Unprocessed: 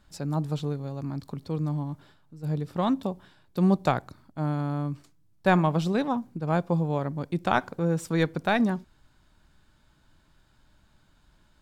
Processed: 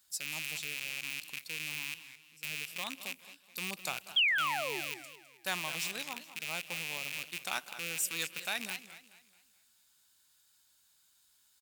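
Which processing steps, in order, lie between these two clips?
rattle on loud lows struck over -35 dBFS, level -21 dBFS; high-pass 46 Hz; treble shelf 5.4 kHz +10 dB; painted sound fall, 4.16–4.81 s, 320–3400 Hz -19 dBFS; pre-emphasis filter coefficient 0.97; speakerphone echo 190 ms, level -17 dB; modulated delay 214 ms, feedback 39%, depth 177 cents, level -14 dB; trim +1.5 dB

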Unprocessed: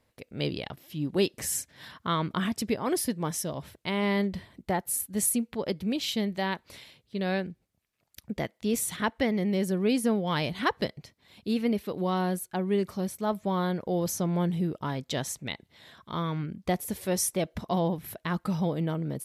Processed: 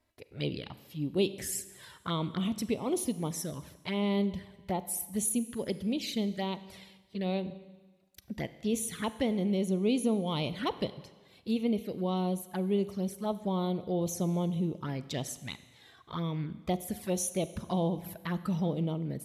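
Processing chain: touch-sensitive flanger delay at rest 3.1 ms, full sweep at -25.5 dBFS; Schroeder reverb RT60 1.3 s, combs from 32 ms, DRR 14 dB; trim -2 dB

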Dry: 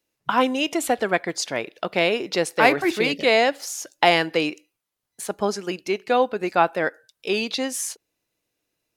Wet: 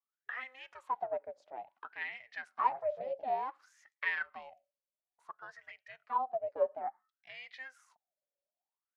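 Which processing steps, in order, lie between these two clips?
ring modulator 260 Hz; wah-wah 0.57 Hz 550–2000 Hz, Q 14

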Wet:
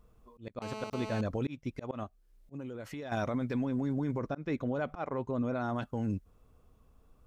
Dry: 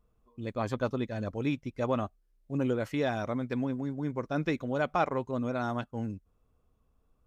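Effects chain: 4.18–5.76 s: treble shelf 2.7 kHz -8.5 dB; slow attack 477 ms; peak limiter -32 dBFS, peak gain reduction 13 dB; 0.62–1.21 s: mobile phone buzz -49 dBFS; 2.03–3.12 s: compression 12:1, threshold -46 dBFS, peak gain reduction 10 dB; trim +8 dB

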